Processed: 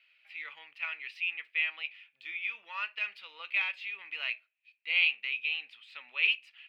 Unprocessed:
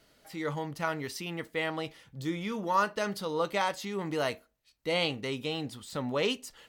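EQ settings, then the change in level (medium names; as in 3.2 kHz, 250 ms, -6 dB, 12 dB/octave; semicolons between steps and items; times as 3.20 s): resonant high-pass 2.5 kHz, resonance Q 11; distance through air 430 m; 0.0 dB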